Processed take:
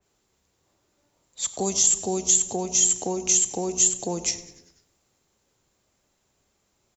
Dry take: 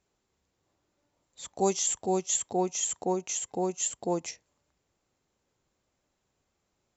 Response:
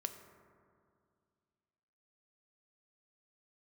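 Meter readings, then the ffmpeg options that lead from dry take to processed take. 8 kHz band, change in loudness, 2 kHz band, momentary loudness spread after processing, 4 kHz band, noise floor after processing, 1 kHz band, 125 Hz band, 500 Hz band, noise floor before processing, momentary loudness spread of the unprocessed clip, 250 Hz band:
n/a, +8.0 dB, +5.0 dB, 9 LU, +9.0 dB, -72 dBFS, -1.5 dB, +3.0 dB, 0.0 dB, -79 dBFS, 13 LU, +1.5 dB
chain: -filter_complex "[0:a]asplit=2[a][b];[b]adelay=104,lowpass=f=960:p=1,volume=-17dB,asplit=2[c][d];[d]adelay=104,lowpass=f=960:p=1,volume=0.54,asplit=2[e][f];[f]adelay=104,lowpass=f=960:p=1,volume=0.54,asplit=2[g][h];[h]adelay=104,lowpass=f=960:p=1,volume=0.54,asplit=2[i][j];[j]adelay=104,lowpass=f=960:p=1,volume=0.54[k];[c][e][g][i][k]amix=inputs=5:normalize=0[l];[a][l]amix=inputs=2:normalize=0,acrossover=split=210[m][n];[n]acompressor=threshold=-33dB:ratio=6[o];[m][o]amix=inputs=2:normalize=0,asplit=6[p][q][r][s][t][u];[q]adelay=99,afreqshift=-120,volume=-21dB[v];[r]adelay=198,afreqshift=-240,volume=-24.9dB[w];[s]adelay=297,afreqshift=-360,volume=-28.8dB[x];[t]adelay=396,afreqshift=-480,volume=-32.6dB[y];[u]adelay=495,afreqshift=-600,volume=-36.5dB[z];[p][v][w][x][y][z]amix=inputs=6:normalize=0,asplit=2[aa][ab];[1:a]atrim=start_sample=2205,afade=t=out:st=0.34:d=0.01,atrim=end_sample=15435,highshelf=f=3.6k:g=10.5[ac];[ab][ac]afir=irnorm=-1:irlink=0,volume=1dB[ad];[aa][ad]amix=inputs=2:normalize=0,adynamicequalizer=threshold=0.00631:dfrequency=2800:dqfactor=0.7:tfrequency=2800:tqfactor=0.7:attack=5:release=100:ratio=0.375:range=3.5:mode=boostabove:tftype=highshelf"

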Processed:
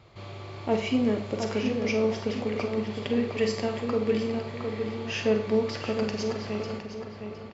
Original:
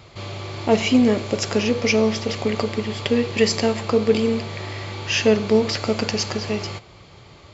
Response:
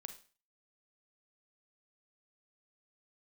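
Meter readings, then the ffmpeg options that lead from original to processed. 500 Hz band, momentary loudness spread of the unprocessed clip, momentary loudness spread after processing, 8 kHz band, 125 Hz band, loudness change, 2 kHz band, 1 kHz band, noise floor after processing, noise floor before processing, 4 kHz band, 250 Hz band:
-6.5 dB, 13 LU, 11 LU, n/a, -7.5 dB, -7.5 dB, -9.0 dB, -7.0 dB, -42 dBFS, -46 dBFS, -11.5 dB, -7.0 dB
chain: -filter_complex "[0:a]highshelf=f=4.1k:g=-10,asplit=2[a][b];[b]adelay=712,lowpass=f=2.7k:p=1,volume=-6dB,asplit=2[c][d];[d]adelay=712,lowpass=f=2.7k:p=1,volume=0.39,asplit=2[e][f];[f]adelay=712,lowpass=f=2.7k:p=1,volume=0.39,asplit=2[g][h];[h]adelay=712,lowpass=f=2.7k:p=1,volume=0.39,asplit=2[i][j];[j]adelay=712,lowpass=f=2.7k:p=1,volume=0.39[k];[a][c][e][g][i][k]amix=inputs=6:normalize=0[l];[1:a]atrim=start_sample=2205[m];[l][m]afir=irnorm=-1:irlink=0,volume=-3dB"

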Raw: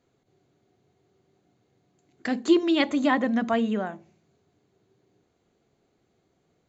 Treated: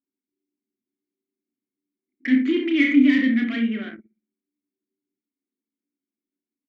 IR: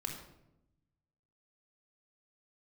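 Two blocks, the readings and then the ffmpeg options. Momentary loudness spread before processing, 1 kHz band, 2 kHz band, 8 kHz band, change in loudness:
11 LU, under -15 dB, +6.0 dB, n/a, +5.0 dB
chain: -filter_complex "[0:a]equalizer=f=125:t=o:w=1:g=-9,equalizer=f=250:t=o:w=1:g=7,equalizer=f=1k:t=o:w=1:g=5,equalizer=f=2k:t=o:w=1:g=11,equalizer=f=4k:t=o:w=1:g=-8,asplit=2[a][b];[b]aecho=0:1:42|65:0.168|0.316[c];[a][c]amix=inputs=2:normalize=0,asplit=2[d][e];[e]highpass=f=720:p=1,volume=23dB,asoftclip=type=tanh:threshold=-2.5dB[f];[d][f]amix=inputs=2:normalize=0,lowpass=f=3.3k:p=1,volume=-6dB,asplit=3[g][h][i];[g]bandpass=f=270:t=q:w=8,volume=0dB[j];[h]bandpass=f=2.29k:t=q:w=8,volume=-6dB[k];[i]bandpass=f=3.01k:t=q:w=8,volume=-9dB[l];[j][k][l]amix=inputs=3:normalize=0,asplit=2[m][n];[n]adelay=31,volume=-5dB[o];[m][o]amix=inputs=2:normalize=0,asplit=2[p][q];[q]adelay=120,lowpass=f=2k:p=1,volume=-21dB,asplit=2[r][s];[s]adelay=120,lowpass=f=2k:p=1,volume=0.45,asplit=2[t][u];[u]adelay=120,lowpass=f=2k:p=1,volume=0.45[v];[r][t][v]amix=inputs=3:normalize=0[w];[p][w]amix=inputs=2:normalize=0,anlmdn=1.58"

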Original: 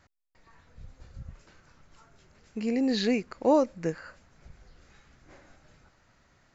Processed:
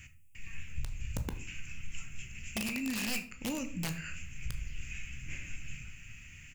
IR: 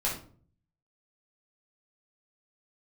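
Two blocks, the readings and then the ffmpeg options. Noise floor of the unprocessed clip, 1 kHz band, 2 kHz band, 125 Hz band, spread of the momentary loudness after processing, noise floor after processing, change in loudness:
-65 dBFS, -14.0 dB, +3.0 dB, +3.5 dB, 15 LU, -53 dBFS, -12.0 dB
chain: -filter_complex "[0:a]firequalizer=gain_entry='entry(110,0);entry(380,-20);entry(630,-28);entry(1000,-24);entry(2600,13);entry(3900,-17);entry(7100,6)':delay=0.05:min_phase=1,acompressor=threshold=-47dB:ratio=8,aeval=exprs='(mod(119*val(0)+1,2)-1)/119':c=same,asplit=2[a][b];[1:a]atrim=start_sample=2205,adelay=16[c];[b][c]afir=irnorm=-1:irlink=0,volume=-14.5dB[d];[a][d]amix=inputs=2:normalize=0,volume=13.5dB"

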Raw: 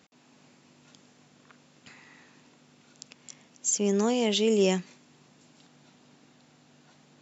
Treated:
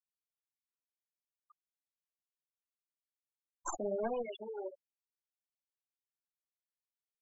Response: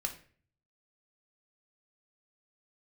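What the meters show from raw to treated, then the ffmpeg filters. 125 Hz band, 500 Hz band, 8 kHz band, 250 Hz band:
under -20 dB, -12.0 dB, n/a, -20.0 dB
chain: -filter_complex "[0:a]aeval=exprs='(tanh(14.1*val(0)+0.75)-tanh(0.75))/14.1':c=same,acrossover=split=310 3800:gain=0.178 1 0.112[a][b][c];[a][b][c]amix=inputs=3:normalize=0,acompressor=threshold=-52dB:ratio=2.5,acrusher=bits=7:mix=0:aa=0.000001,alimiter=level_in=15.5dB:limit=-24dB:level=0:latency=1:release=186,volume=-15.5dB,tremolo=f=0.55:d=0.65,asplit=2[d][e];[e]adelay=22,volume=-11dB[f];[d][f]amix=inputs=2:normalize=0,flanger=delay=3.5:depth=8.9:regen=-41:speed=1.2:shape=triangular,asplit=2[g][h];[h]highpass=180,lowpass=6.3k[i];[1:a]atrim=start_sample=2205[j];[i][j]afir=irnorm=-1:irlink=0,volume=-7dB[k];[g][k]amix=inputs=2:normalize=0,afftfilt=real='re*gte(hypot(re,im),0.00562)':imag='im*gte(hypot(re,im),0.00562)':win_size=1024:overlap=0.75,volume=18dB"

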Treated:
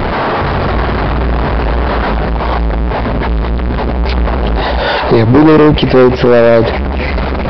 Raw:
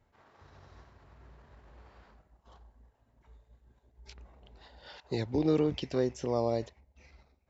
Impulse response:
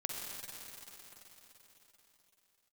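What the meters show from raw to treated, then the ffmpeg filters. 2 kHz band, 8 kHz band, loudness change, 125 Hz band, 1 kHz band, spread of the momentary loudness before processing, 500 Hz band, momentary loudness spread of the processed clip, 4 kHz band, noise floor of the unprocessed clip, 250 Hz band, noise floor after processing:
+35.0 dB, n/a, +20.0 dB, +27.5 dB, +31.0 dB, 11 LU, +24.5 dB, 9 LU, +26.5 dB, -71 dBFS, +24.0 dB, -15 dBFS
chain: -af "aeval=exprs='val(0)+0.5*0.01*sgn(val(0))':c=same,lowpass=f=1.2k:p=1,equalizer=f=84:t=o:w=0.92:g=-6.5,aresample=11025,asoftclip=type=hard:threshold=-30dB,aresample=44100,alimiter=level_in=35.5dB:limit=-1dB:release=50:level=0:latency=1,volume=-1dB"

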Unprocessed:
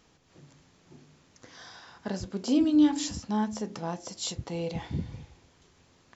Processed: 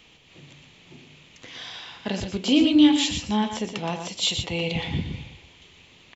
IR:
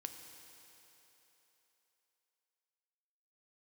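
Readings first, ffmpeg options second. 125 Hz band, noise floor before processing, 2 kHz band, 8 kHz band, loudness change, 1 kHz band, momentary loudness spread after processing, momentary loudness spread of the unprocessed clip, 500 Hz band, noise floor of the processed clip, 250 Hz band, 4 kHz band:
+5.5 dB, -63 dBFS, +12.5 dB, n/a, +6.0 dB, +5.0 dB, 20 LU, 24 LU, +5.0 dB, -54 dBFS, +5.0 dB, +14.0 dB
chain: -filter_complex "[0:a]acrossover=split=520|3200[a][b][c];[b]aexciter=amount=6.8:drive=7.5:freq=2.3k[d];[a][d][c]amix=inputs=3:normalize=0,aecho=1:1:120:0.447,volume=4.5dB"

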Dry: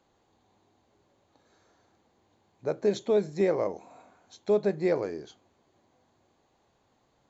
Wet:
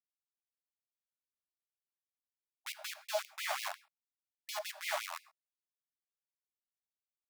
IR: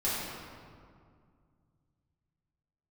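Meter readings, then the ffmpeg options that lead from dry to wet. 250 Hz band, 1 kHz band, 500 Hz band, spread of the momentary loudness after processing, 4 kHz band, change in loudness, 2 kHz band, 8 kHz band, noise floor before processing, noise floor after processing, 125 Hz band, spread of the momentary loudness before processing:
under -40 dB, -2.0 dB, -18.5 dB, 11 LU, +5.5 dB, -11.0 dB, +2.5 dB, n/a, -70 dBFS, under -85 dBFS, under -40 dB, 13 LU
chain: -filter_complex "[0:a]afwtdn=0.0126,aeval=exprs='val(0)*gte(abs(val(0)),0.0299)':c=same,asplit=2[a][b];[1:a]atrim=start_sample=2205,atrim=end_sample=6174[c];[b][c]afir=irnorm=-1:irlink=0,volume=-18.5dB[d];[a][d]amix=inputs=2:normalize=0,afftfilt=real='re*gte(b*sr/1024,560*pow(2100/560,0.5+0.5*sin(2*PI*5.6*pts/sr)))':imag='im*gte(b*sr/1024,560*pow(2100/560,0.5+0.5*sin(2*PI*5.6*pts/sr)))':win_size=1024:overlap=0.75,volume=1dB"

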